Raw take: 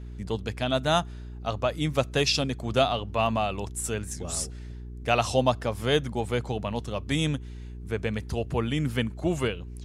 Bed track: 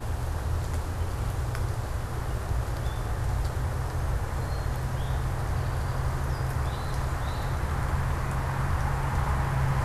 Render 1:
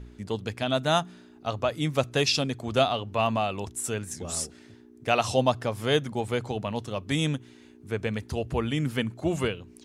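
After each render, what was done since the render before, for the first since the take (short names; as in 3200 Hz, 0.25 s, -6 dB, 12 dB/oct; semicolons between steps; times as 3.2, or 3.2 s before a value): de-hum 60 Hz, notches 3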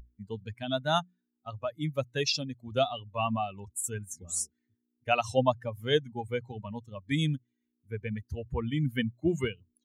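per-bin expansion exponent 2; vocal rider within 4 dB 2 s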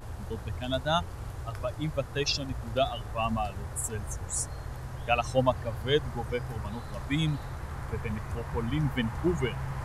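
add bed track -9 dB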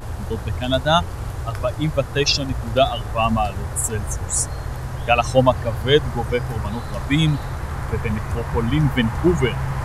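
gain +10.5 dB; limiter -2 dBFS, peak gain reduction 2.5 dB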